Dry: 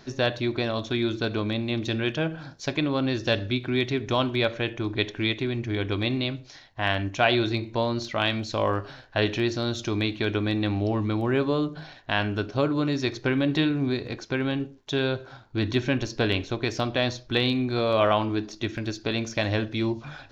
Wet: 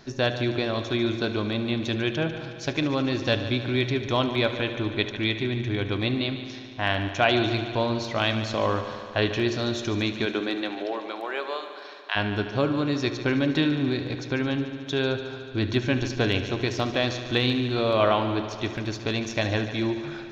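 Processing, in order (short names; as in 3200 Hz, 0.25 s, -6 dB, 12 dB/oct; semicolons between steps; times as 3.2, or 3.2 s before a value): 10.25–12.15 HPF 240 Hz -> 920 Hz 24 dB/oct; multi-head echo 73 ms, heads first and second, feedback 73%, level -15 dB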